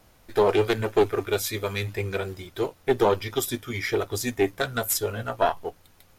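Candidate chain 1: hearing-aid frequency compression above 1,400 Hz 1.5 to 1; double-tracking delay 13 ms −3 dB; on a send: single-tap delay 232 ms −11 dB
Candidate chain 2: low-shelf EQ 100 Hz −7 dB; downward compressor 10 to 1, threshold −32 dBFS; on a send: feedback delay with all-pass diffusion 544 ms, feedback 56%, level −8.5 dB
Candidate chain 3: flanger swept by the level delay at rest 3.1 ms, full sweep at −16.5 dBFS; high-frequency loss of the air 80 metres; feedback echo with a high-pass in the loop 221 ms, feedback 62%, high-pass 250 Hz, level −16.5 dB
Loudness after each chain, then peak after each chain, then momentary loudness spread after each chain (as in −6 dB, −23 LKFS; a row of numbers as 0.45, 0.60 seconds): −24.5, −36.5, −29.0 LKFS; −6.5, −18.5, −9.0 dBFS; 8, 3, 13 LU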